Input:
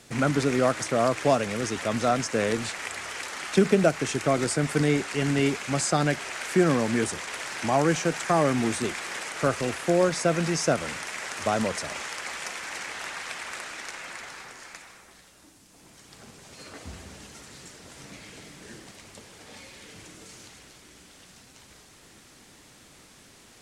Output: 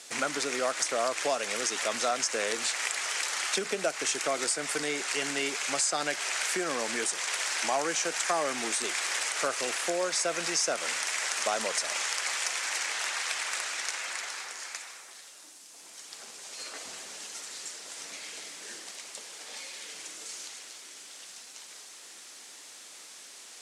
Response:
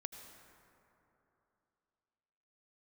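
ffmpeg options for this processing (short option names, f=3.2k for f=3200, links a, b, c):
-af "aemphasis=mode=production:type=75kf,acompressor=threshold=-24dB:ratio=3,highpass=480,lowpass=7.6k"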